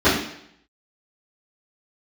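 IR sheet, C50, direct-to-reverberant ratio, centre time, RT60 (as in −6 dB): 3.5 dB, −15.5 dB, 44 ms, 0.70 s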